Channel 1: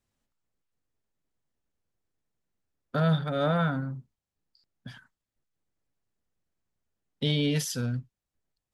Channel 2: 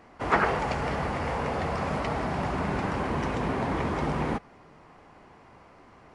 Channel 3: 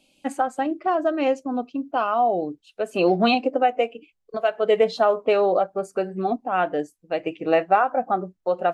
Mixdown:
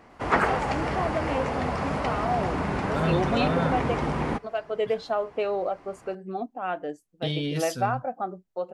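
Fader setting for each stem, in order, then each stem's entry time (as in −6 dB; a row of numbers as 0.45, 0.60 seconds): −3.0, +1.0, −8.0 decibels; 0.00, 0.00, 0.10 seconds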